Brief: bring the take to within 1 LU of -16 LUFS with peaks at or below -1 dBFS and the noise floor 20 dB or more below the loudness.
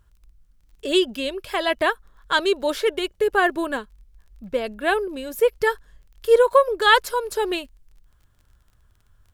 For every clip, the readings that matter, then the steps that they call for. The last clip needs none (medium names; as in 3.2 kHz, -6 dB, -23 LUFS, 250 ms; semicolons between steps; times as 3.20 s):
tick rate 17 per s; loudness -21.5 LUFS; peak level -3.5 dBFS; loudness target -16.0 LUFS
-> de-click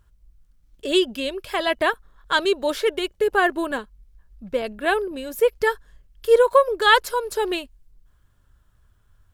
tick rate 0.32 per s; loudness -21.5 LUFS; peak level -3.5 dBFS; loudness target -16.0 LUFS
-> trim +5.5 dB; peak limiter -1 dBFS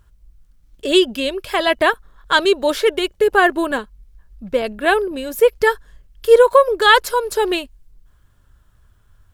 loudness -16.5 LUFS; peak level -1.0 dBFS; noise floor -55 dBFS